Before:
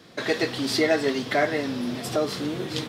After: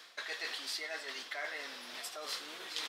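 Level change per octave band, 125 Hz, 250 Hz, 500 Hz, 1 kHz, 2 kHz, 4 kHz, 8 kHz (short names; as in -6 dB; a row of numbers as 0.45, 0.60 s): under -40 dB, -31.5 dB, -23.5 dB, -16.0 dB, -11.0 dB, -8.0 dB, -8.5 dB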